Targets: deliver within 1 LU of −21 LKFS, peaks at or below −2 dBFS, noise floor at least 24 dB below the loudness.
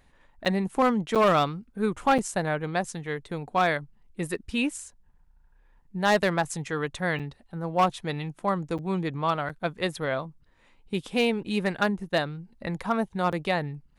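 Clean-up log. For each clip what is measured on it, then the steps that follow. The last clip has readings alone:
share of clipped samples 0.5%; peaks flattened at −15.0 dBFS; number of dropouts 7; longest dropout 7.0 ms; integrated loudness −27.5 LKFS; sample peak −15.0 dBFS; target loudness −21.0 LKFS
→ clipped peaks rebuilt −15 dBFS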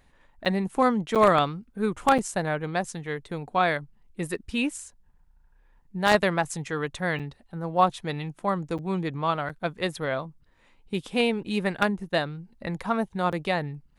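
share of clipped samples 0.0%; number of dropouts 7; longest dropout 7.0 ms
→ repair the gap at 0:00.45/0:01.15/0:02.18/0:07.19/0:08.78/0:09.49/0:13.32, 7 ms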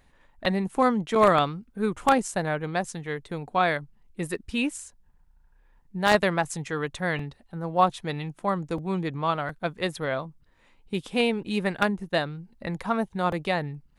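number of dropouts 0; integrated loudness −27.0 LKFS; sample peak −6.0 dBFS; target loudness −21.0 LKFS
→ level +6 dB
brickwall limiter −2 dBFS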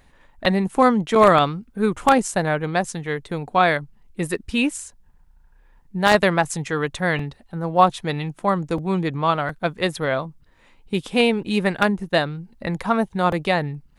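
integrated loudness −21.0 LKFS; sample peak −2.0 dBFS; background noise floor −55 dBFS

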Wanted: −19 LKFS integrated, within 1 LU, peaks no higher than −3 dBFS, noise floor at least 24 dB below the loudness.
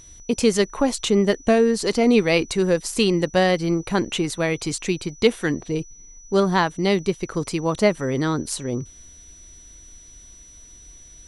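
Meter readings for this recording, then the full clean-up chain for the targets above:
interfering tone 5,900 Hz; level of the tone −45 dBFS; integrated loudness −21.5 LKFS; sample peak −4.0 dBFS; target loudness −19.0 LKFS
→ notch filter 5,900 Hz, Q 30
level +2.5 dB
brickwall limiter −3 dBFS

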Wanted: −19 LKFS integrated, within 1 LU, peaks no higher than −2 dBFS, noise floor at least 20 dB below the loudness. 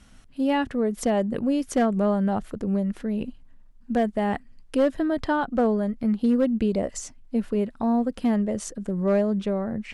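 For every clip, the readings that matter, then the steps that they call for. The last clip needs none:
share of clipped samples 0.4%; peaks flattened at −14.5 dBFS; integrated loudness −25.0 LKFS; sample peak −14.5 dBFS; target loudness −19.0 LKFS
→ clipped peaks rebuilt −14.5 dBFS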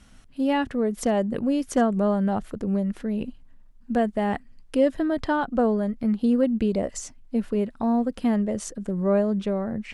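share of clipped samples 0.0%; integrated loudness −25.0 LKFS; sample peak −9.5 dBFS; target loudness −19.0 LKFS
→ level +6 dB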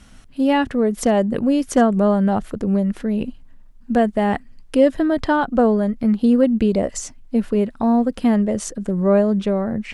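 integrated loudness −19.0 LKFS; sample peak −3.5 dBFS; background noise floor −45 dBFS

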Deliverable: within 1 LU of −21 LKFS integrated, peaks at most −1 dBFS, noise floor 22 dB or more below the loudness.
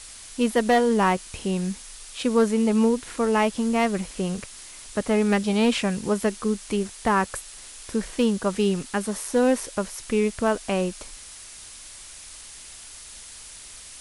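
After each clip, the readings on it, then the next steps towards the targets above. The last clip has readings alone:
share of clipped samples 0.3%; peaks flattened at −12.0 dBFS; background noise floor −43 dBFS; target noise floor −46 dBFS; integrated loudness −24.0 LKFS; sample peak −12.0 dBFS; target loudness −21.0 LKFS
→ clipped peaks rebuilt −12 dBFS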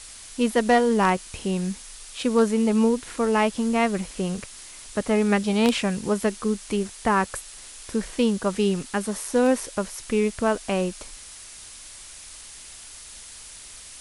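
share of clipped samples 0.0%; background noise floor −43 dBFS; target noise floor −46 dBFS
→ noise reduction from a noise print 6 dB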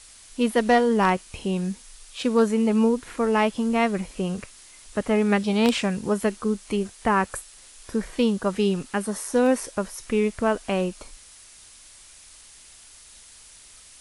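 background noise floor −49 dBFS; integrated loudness −24.0 LKFS; sample peak −3.0 dBFS; target loudness −21.0 LKFS
→ level +3 dB
brickwall limiter −1 dBFS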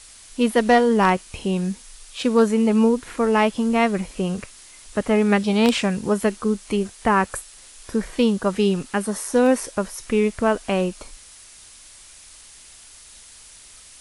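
integrated loudness −21.0 LKFS; sample peak −1.0 dBFS; background noise floor −46 dBFS

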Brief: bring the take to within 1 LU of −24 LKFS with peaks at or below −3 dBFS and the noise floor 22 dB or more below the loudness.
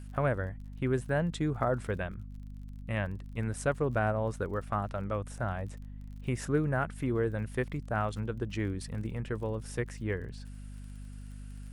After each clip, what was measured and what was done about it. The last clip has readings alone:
crackle rate 37 per second; mains hum 50 Hz; hum harmonics up to 250 Hz; level of the hum −41 dBFS; integrated loudness −33.5 LKFS; sample peak −16.0 dBFS; target loudness −24.0 LKFS
→ click removal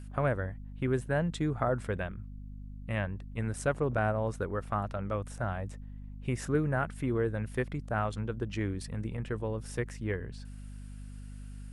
crackle rate 0 per second; mains hum 50 Hz; hum harmonics up to 250 Hz; level of the hum −41 dBFS
→ hum removal 50 Hz, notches 5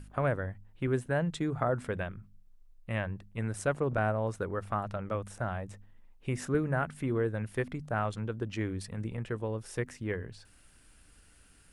mains hum none found; integrated loudness −34.0 LKFS; sample peak −16.5 dBFS; target loudness −24.0 LKFS
→ level +10 dB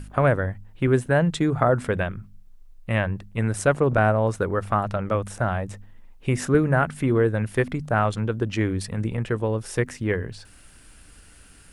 integrated loudness −24.0 LKFS; sample peak −6.5 dBFS; background noise floor −50 dBFS

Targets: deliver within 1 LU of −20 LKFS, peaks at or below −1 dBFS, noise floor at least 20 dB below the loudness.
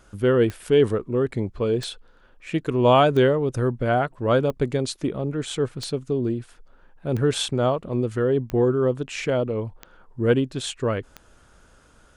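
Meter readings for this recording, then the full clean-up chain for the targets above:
number of clicks 9; integrated loudness −23.0 LKFS; sample peak −5.5 dBFS; target loudness −20.0 LKFS
→ click removal
level +3 dB

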